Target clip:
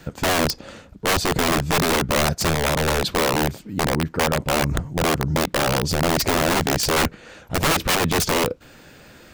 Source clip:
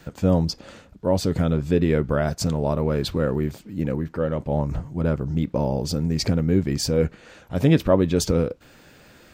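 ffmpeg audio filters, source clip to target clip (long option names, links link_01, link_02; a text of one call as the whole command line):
ffmpeg -i in.wav -filter_complex "[0:a]asettb=1/sr,asplit=3[link_01][link_02][link_03];[link_01]atrim=end=2.414[link_04];[link_02]atrim=start=2.41:end=3.16,asetpts=PTS-STARTPTS,afade=type=in:duration=0.004:curve=qsin,afade=type=out:start_time=0.746:duration=0.004:curve=qsin,lowshelf=frequency=120:width_type=q:width=1.5:gain=-11[link_05];[link_03]atrim=start=3.156[link_06];[link_04][link_05]acrossfade=duration=0.004:curve1=hsin:curve2=qsin[link_07];[link_07][link_06]acrossfade=duration=0.004:curve1=qsin:curve2=hsin,aeval=exprs='(mod(7.5*val(0)+1,2)-1)/7.5':channel_layout=same,volume=4dB" out.wav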